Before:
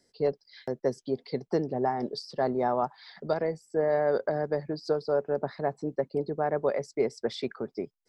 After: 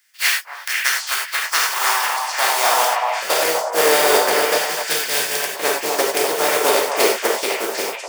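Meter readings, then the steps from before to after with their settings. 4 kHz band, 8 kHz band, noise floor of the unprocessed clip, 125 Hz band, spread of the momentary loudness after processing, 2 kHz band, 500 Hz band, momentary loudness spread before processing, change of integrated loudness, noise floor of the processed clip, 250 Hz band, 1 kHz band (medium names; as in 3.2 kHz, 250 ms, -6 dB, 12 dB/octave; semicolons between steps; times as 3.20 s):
+24.5 dB, no reading, -74 dBFS, -10.0 dB, 6 LU, +23.5 dB, +7.0 dB, 8 LU, +12.5 dB, -35 dBFS, +1.0 dB, +13.5 dB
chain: spectral contrast reduction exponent 0.2; high-pass sweep 1.8 kHz -> 420 Hz, 0.58–4.03 s; band-stop 4 kHz, Q 18; gated-style reverb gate 120 ms flat, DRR -1.5 dB; companded quantiser 8-bit; time-frequency box 4.58–5.56 s, 220–1500 Hz -10 dB; repeats whose band climbs or falls 249 ms, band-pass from 830 Hz, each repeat 1.4 oct, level -1 dB; trim +5 dB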